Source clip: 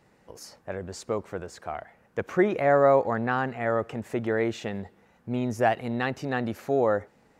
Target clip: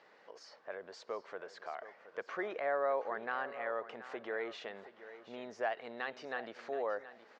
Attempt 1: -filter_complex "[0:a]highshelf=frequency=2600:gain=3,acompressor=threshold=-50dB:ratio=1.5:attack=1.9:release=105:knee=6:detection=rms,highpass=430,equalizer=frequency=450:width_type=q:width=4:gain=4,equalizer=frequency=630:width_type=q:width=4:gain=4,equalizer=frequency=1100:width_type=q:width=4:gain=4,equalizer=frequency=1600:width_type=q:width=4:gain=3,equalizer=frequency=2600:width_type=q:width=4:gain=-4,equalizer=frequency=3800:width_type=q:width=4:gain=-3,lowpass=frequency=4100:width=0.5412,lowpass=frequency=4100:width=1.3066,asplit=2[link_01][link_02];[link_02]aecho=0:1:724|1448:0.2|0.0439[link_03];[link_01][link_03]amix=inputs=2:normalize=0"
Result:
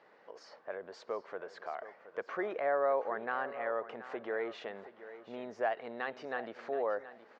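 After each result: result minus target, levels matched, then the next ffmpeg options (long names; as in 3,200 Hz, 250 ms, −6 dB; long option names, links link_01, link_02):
4,000 Hz band −4.5 dB; downward compressor: peak gain reduction −3.5 dB
-filter_complex "[0:a]highshelf=frequency=2600:gain=13.5,acompressor=threshold=-50dB:ratio=1.5:attack=1.9:release=105:knee=6:detection=rms,highpass=430,equalizer=frequency=450:width_type=q:width=4:gain=4,equalizer=frequency=630:width_type=q:width=4:gain=4,equalizer=frequency=1100:width_type=q:width=4:gain=4,equalizer=frequency=1600:width_type=q:width=4:gain=3,equalizer=frequency=2600:width_type=q:width=4:gain=-4,equalizer=frequency=3800:width_type=q:width=4:gain=-3,lowpass=frequency=4100:width=0.5412,lowpass=frequency=4100:width=1.3066,asplit=2[link_01][link_02];[link_02]aecho=0:1:724|1448:0.2|0.0439[link_03];[link_01][link_03]amix=inputs=2:normalize=0"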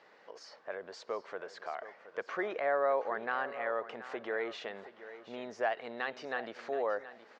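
downward compressor: peak gain reduction −3.5 dB
-filter_complex "[0:a]highshelf=frequency=2600:gain=13.5,acompressor=threshold=-60dB:ratio=1.5:attack=1.9:release=105:knee=6:detection=rms,highpass=430,equalizer=frequency=450:width_type=q:width=4:gain=4,equalizer=frequency=630:width_type=q:width=4:gain=4,equalizer=frequency=1100:width_type=q:width=4:gain=4,equalizer=frequency=1600:width_type=q:width=4:gain=3,equalizer=frequency=2600:width_type=q:width=4:gain=-4,equalizer=frequency=3800:width_type=q:width=4:gain=-3,lowpass=frequency=4100:width=0.5412,lowpass=frequency=4100:width=1.3066,asplit=2[link_01][link_02];[link_02]aecho=0:1:724|1448:0.2|0.0439[link_03];[link_01][link_03]amix=inputs=2:normalize=0"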